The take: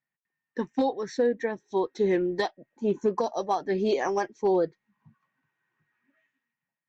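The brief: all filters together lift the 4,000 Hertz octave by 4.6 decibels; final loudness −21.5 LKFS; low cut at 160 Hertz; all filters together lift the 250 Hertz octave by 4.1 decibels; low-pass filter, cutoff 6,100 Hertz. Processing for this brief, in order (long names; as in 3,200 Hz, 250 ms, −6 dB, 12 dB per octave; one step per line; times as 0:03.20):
high-pass filter 160 Hz
low-pass filter 6,100 Hz
parametric band 250 Hz +6.5 dB
parametric band 4,000 Hz +6 dB
level +4 dB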